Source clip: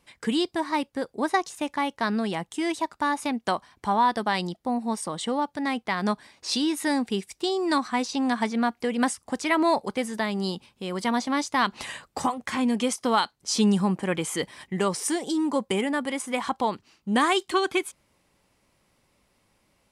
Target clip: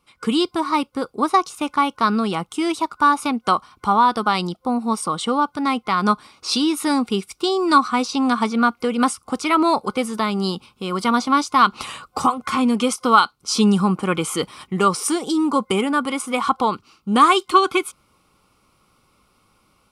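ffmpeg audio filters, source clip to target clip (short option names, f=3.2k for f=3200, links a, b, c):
-af "dynaudnorm=f=140:g=3:m=8dB,superequalizer=8b=0.631:10b=2.51:11b=0.355:15b=0.708,volume=-2dB"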